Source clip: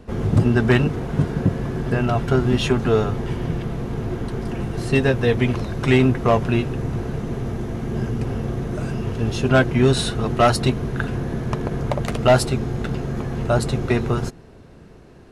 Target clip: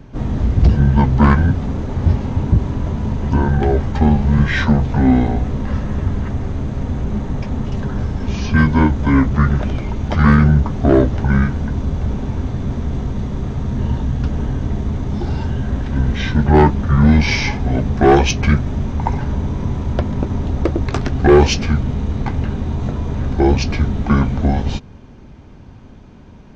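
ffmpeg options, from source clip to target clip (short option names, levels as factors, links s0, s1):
-af "acontrast=38,asetrate=25442,aresample=44100"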